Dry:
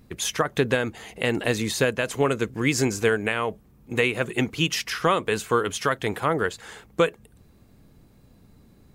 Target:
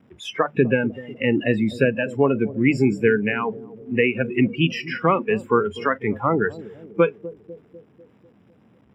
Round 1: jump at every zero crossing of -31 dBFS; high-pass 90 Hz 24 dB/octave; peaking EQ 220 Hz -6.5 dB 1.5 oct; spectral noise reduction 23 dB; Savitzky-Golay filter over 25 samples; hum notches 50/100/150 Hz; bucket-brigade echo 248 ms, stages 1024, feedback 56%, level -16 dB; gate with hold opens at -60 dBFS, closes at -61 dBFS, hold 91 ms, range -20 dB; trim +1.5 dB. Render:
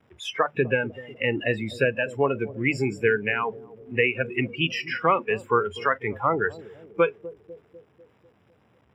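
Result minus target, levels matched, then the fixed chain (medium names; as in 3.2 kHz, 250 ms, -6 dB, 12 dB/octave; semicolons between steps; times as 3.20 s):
250 Hz band -6.0 dB
jump at every zero crossing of -31 dBFS; high-pass 90 Hz 24 dB/octave; peaking EQ 220 Hz +5 dB 1.5 oct; spectral noise reduction 23 dB; Savitzky-Golay filter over 25 samples; hum notches 50/100/150 Hz; bucket-brigade echo 248 ms, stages 1024, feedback 56%, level -16 dB; gate with hold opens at -60 dBFS, closes at -61 dBFS, hold 91 ms, range -20 dB; trim +1.5 dB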